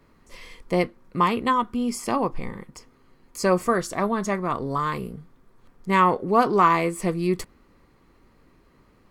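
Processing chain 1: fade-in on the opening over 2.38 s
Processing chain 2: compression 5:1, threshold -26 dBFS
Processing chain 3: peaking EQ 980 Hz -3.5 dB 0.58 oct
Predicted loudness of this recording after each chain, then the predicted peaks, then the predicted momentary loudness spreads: -24.0 LUFS, -31.5 LUFS, -24.5 LUFS; -5.0 dBFS, -14.0 dBFS, -5.5 dBFS; 18 LU, 15 LU, 17 LU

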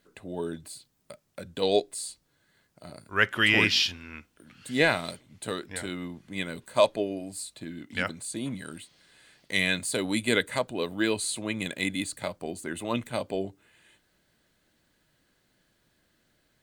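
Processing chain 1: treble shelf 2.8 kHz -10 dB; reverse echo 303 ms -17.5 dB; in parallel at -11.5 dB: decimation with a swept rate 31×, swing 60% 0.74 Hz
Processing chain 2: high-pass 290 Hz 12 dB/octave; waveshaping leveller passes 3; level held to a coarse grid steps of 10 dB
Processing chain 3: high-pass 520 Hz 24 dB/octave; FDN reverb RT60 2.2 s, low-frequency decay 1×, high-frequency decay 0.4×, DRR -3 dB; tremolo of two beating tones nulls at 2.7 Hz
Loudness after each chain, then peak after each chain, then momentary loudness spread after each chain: -29.5 LUFS, -24.5 LUFS, -28.5 LUFS; -8.5 dBFS, -9.5 dBFS, -6.0 dBFS; 18 LU, 17 LU, 20 LU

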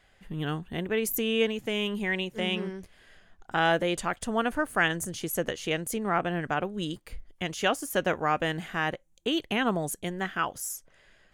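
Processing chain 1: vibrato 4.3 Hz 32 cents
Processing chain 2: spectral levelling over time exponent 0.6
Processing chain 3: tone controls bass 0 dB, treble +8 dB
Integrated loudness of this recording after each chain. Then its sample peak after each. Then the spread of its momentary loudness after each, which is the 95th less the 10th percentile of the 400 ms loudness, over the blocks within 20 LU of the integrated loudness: -29.5 LUFS, -26.0 LUFS, -28.0 LUFS; -11.5 dBFS, -6.5 dBFS, -9.5 dBFS; 9 LU, 9 LU, 9 LU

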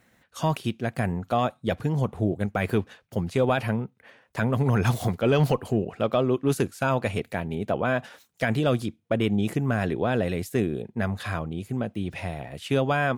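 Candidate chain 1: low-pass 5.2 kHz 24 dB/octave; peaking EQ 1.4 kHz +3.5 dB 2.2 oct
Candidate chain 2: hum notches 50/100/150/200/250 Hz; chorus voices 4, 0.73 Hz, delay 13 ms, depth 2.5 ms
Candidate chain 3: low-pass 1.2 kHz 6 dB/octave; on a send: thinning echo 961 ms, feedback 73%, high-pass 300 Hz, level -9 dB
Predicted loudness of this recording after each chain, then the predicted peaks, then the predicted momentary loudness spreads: -25.5 LUFS, -30.0 LUFS, -27.0 LUFS; -9.5 dBFS, -12.0 dBFS, -11.0 dBFS; 8 LU, 9 LU, 7 LU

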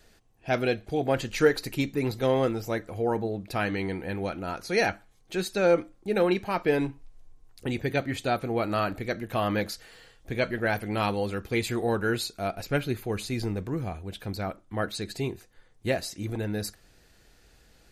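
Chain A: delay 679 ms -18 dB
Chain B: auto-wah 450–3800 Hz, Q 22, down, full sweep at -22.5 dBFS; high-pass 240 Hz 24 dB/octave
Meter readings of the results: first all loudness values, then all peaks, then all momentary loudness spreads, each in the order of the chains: -29.0 LUFS, -39.5 LUFS; -8.5 dBFS, -15.0 dBFS; 11 LU, 21 LU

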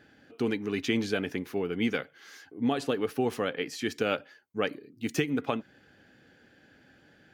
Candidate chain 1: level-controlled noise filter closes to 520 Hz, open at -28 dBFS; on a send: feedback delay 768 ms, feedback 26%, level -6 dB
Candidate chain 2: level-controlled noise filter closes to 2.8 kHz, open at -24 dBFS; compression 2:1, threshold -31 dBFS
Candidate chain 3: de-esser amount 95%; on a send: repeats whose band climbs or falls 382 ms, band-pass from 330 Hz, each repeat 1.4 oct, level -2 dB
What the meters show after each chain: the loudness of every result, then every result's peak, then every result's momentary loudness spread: -31.0 LUFS, -35.0 LUFS, -30.5 LUFS; -12.0 dBFS, -16.0 dBFS, -12.5 dBFS; 13 LU, 7 LU, 8 LU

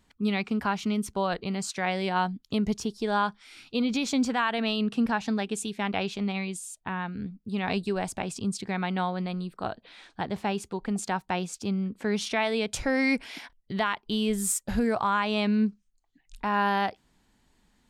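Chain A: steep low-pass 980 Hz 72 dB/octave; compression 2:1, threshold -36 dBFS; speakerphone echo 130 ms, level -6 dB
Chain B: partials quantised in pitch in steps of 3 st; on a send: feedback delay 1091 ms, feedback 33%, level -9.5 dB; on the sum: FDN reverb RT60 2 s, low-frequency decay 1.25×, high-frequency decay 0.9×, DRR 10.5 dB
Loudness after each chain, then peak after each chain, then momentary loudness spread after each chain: -36.0 LUFS, -25.0 LUFS; -23.0 dBFS, -4.5 dBFS; 7 LU, 9 LU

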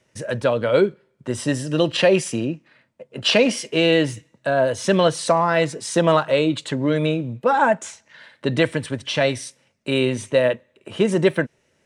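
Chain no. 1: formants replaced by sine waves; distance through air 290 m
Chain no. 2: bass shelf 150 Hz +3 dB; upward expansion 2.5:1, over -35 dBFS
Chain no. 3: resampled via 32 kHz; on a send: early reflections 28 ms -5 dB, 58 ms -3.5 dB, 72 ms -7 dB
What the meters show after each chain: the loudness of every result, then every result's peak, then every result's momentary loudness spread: -21.5 LUFS, -26.0 LUFS, -17.5 LUFS; -2.5 dBFS, -5.0 dBFS, -1.5 dBFS; 16 LU, 15 LU, 10 LU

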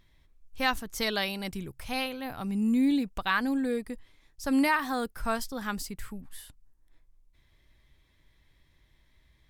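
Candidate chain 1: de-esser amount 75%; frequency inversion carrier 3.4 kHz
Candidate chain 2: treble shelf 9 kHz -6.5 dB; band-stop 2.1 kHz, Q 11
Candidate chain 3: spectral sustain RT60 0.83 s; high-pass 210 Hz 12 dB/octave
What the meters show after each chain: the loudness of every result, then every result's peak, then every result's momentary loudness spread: -27.0 LUFS, -30.0 LUFS, -28.5 LUFS; -14.5 dBFS, -14.0 dBFS, -10.0 dBFS; 13 LU, 15 LU, 14 LU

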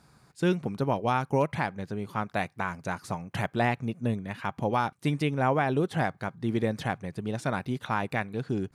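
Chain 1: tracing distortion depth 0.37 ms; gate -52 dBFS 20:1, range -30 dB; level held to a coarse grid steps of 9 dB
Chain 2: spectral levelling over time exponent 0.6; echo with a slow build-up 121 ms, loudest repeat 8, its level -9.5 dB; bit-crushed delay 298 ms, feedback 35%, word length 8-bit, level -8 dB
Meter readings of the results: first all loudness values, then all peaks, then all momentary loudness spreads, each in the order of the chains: -33.0 LUFS, -21.5 LUFS; -14.5 dBFS, -5.5 dBFS; 10 LU, 2 LU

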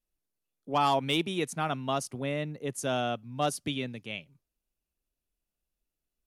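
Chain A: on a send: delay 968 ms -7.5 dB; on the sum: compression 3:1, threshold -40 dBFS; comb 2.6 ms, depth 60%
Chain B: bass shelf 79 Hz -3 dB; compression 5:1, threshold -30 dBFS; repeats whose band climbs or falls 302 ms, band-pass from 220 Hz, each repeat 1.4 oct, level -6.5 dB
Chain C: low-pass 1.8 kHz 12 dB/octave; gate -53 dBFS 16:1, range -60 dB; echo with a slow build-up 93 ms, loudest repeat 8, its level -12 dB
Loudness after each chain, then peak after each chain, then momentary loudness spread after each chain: -40.5 LUFS, -35.5 LUFS, -30.5 LUFS; -25.0 dBFS, -19.0 dBFS, -15.0 dBFS; 7 LU, 15 LU, 12 LU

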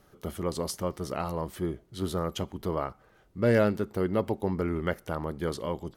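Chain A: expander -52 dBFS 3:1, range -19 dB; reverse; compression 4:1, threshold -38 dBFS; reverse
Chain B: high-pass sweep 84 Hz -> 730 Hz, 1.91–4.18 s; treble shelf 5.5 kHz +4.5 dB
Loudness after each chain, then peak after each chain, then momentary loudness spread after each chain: -41.5 LUFS, -29.0 LUFS; -24.5 dBFS, -8.0 dBFS; 4 LU, 13 LU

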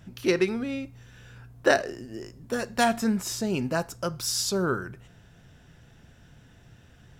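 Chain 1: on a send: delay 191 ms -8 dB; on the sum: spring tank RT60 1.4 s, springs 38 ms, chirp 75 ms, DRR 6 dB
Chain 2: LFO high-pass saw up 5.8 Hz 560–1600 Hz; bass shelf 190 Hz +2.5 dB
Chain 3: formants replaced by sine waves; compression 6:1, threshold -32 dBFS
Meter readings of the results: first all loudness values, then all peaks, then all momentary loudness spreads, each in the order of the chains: -26.0 LUFS, -27.0 LUFS, -38.0 LUFS; -6.0 dBFS, -5.5 dBFS, -21.5 dBFS; 14 LU, 18 LU, 7 LU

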